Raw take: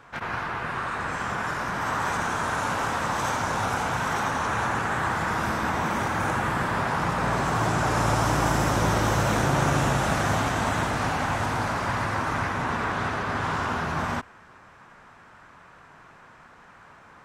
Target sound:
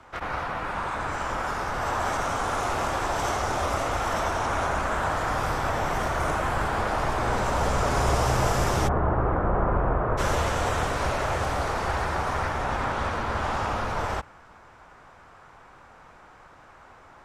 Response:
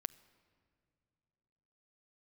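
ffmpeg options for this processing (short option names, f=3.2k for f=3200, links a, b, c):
-filter_complex "[0:a]asplit=3[a][b][c];[a]afade=t=out:st=8.87:d=0.02[d];[b]lowpass=f=1.6k:w=0.5412,lowpass=f=1.6k:w=1.3066,afade=t=in:st=8.87:d=0.02,afade=t=out:st=10.17:d=0.02[e];[c]afade=t=in:st=10.17:d=0.02[f];[d][e][f]amix=inputs=3:normalize=0,afreqshift=-180"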